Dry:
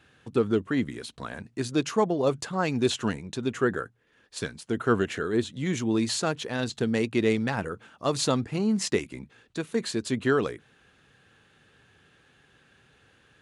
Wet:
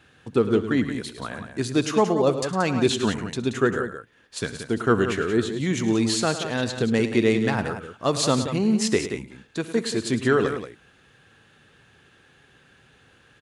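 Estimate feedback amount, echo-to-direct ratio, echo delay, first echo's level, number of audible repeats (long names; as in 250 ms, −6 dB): repeats not evenly spaced, −7.5 dB, 65 ms, −19.0 dB, 3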